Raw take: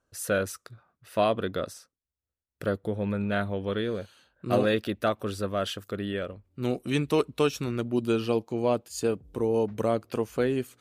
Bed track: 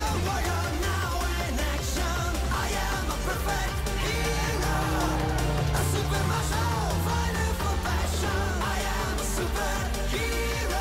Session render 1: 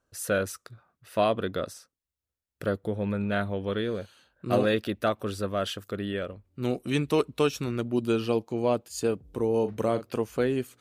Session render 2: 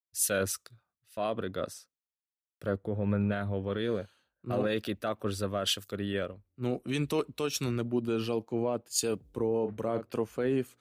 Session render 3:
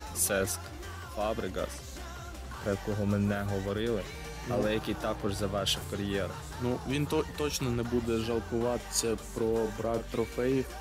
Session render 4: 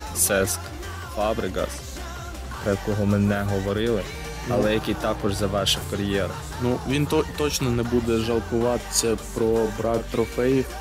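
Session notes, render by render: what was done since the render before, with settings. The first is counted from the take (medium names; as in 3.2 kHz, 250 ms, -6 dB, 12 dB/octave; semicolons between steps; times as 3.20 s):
9.59–10.07 s: doubling 41 ms -11 dB
peak limiter -21 dBFS, peak gain reduction 9 dB; three bands expanded up and down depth 100%
add bed track -14.5 dB
trim +8 dB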